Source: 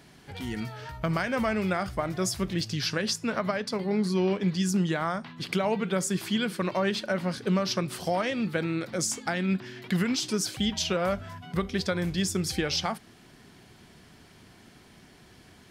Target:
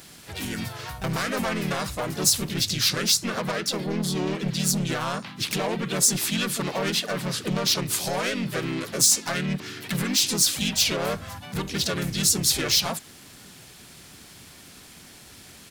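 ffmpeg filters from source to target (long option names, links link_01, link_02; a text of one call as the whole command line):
ffmpeg -i in.wav -filter_complex "[0:a]asoftclip=type=tanh:threshold=-25.5dB,crystalizer=i=3.5:c=0,asplit=3[link_01][link_02][link_03];[link_02]asetrate=35002,aresample=44100,atempo=1.25992,volume=-2dB[link_04];[link_03]asetrate=52444,aresample=44100,atempo=0.840896,volume=-7dB[link_05];[link_01][link_04][link_05]amix=inputs=3:normalize=0" out.wav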